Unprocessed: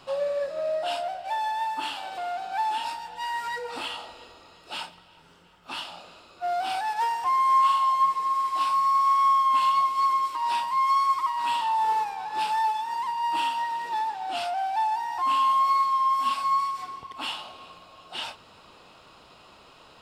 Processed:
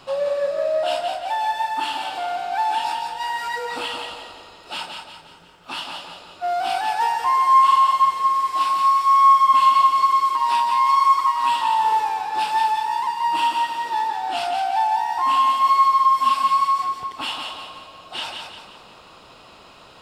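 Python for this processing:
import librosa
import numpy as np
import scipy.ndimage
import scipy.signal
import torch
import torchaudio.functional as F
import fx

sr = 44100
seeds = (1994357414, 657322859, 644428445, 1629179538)

y = fx.echo_feedback(x, sr, ms=175, feedback_pct=43, wet_db=-5.0)
y = y * librosa.db_to_amplitude(4.5)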